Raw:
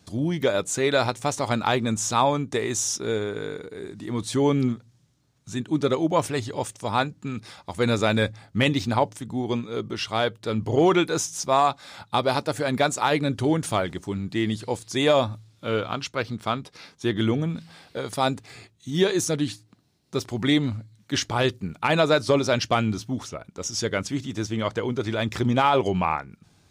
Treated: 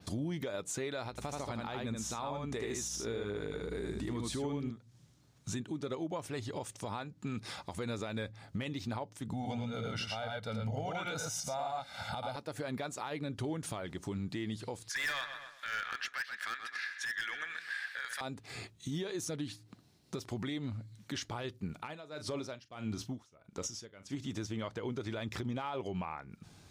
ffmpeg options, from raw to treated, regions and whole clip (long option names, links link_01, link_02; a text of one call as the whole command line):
ffmpeg -i in.wav -filter_complex "[0:a]asettb=1/sr,asplit=3[link_01][link_02][link_03];[link_01]atrim=end=1.104[link_04];[link_02]atrim=start=1.1:end=4.71,asetpts=PTS-STARTPTS,afade=type=in:duration=0.004:curve=qsin,afade=type=out:start_time=3.606:duration=0.004:curve=qsin,aeval=exprs='val(0)+0.00891*(sin(2*PI*60*n/s)+sin(2*PI*2*60*n/s)/2+sin(2*PI*3*60*n/s)/3+sin(2*PI*4*60*n/s)/4+sin(2*PI*5*60*n/s)/5)':channel_layout=same,aecho=1:1:78:0.668,atrim=end_sample=159201[link_05];[link_03]atrim=start=4.706[link_06];[link_04][link_05]acrossfade=duration=0.004:curve1=hsin:curve2=qsin[link_07];[link_07][link_06]acrossfade=duration=0.004:curve1=qsin:curve2=hsin,asettb=1/sr,asplit=3[link_08][link_09][link_10];[link_08]atrim=end=9.334[link_11];[link_09]atrim=start=9.33:end=12.36,asetpts=PTS-STARTPTS,afade=type=in:duration=0.004:curve=qsin,afade=type=out:start_time=3.026:duration=0.004:curve=qsin,aecho=1:1:1.4:0.91,atrim=end_sample=133623,aecho=1:1:84|110:0.473|0.708,atrim=end_sample=133623[link_12];[link_10]atrim=start=12.356[link_13];[link_11][link_12]acrossfade=duration=0.004:curve1=hsin:curve2=qsin[link_14];[link_14][link_13]acrossfade=duration=0.004:curve1=qsin:curve2=hsin,asettb=1/sr,asplit=3[link_15][link_16][link_17];[link_15]atrim=end=14.894[link_18];[link_16]atrim=start=14.89:end=18.21,asetpts=PTS-STARTPTS,afade=type=in:duration=0.004:curve=qsin,afade=type=out:start_time=3.316:duration=0.004:curve=qsin,highpass=frequency=1700:width_type=q:width=14,volume=20.5dB,asoftclip=hard,volume=-20.5dB,asplit=2[link_19][link_20];[link_20]adelay=126,lowpass=frequency=3700:poles=1,volume=-12.5dB,asplit=2[link_21][link_22];[link_22]adelay=126,lowpass=frequency=3700:poles=1,volume=0.34,asplit=2[link_23][link_24];[link_24]adelay=126,lowpass=frequency=3700:poles=1,volume=0.34[link_25];[link_19][link_21][link_23][link_25]amix=inputs=4:normalize=0,atrim=end_sample=146412[link_26];[link_17]atrim=start=18.206[link_27];[link_18][link_26]acrossfade=duration=0.004:curve1=hsin:curve2=qsin[link_28];[link_28][link_27]acrossfade=duration=0.004:curve1=qsin:curve2=hsin,asettb=1/sr,asplit=3[link_29][link_30][link_31];[link_29]atrim=end=21.754[link_32];[link_30]atrim=start=21.75:end=24.15,asetpts=PTS-STARTPTS,afade=type=in:duration=0.004:curve=qsin,afade=type=out:start_time=2.396:duration=0.004:curve=qsin,asplit=2[link_33][link_34];[link_34]adelay=40,volume=-14dB[link_35];[link_33][link_35]amix=inputs=2:normalize=0,atrim=end_sample=105840,aeval=exprs='val(0)*pow(10,-32*(0.5-0.5*cos(2*PI*1.6*n/s))/20)':channel_layout=same[link_36];[link_31]atrim=start=24.146[link_37];[link_32][link_36]acrossfade=duration=0.004:curve1=hsin:curve2=qsin[link_38];[link_38][link_37]acrossfade=duration=0.004:curve1=qsin:curve2=hsin,adynamicequalizer=threshold=0.00398:dfrequency=7700:dqfactor=1.3:tfrequency=7700:tqfactor=1.3:attack=5:release=100:ratio=0.375:range=2.5:mode=cutabove:tftype=bell,acompressor=threshold=-35dB:ratio=8,alimiter=level_in=6dB:limit=-24dB:level=0:latency=1:release=82,volume=-6dB,volume=1.5dB" out.wav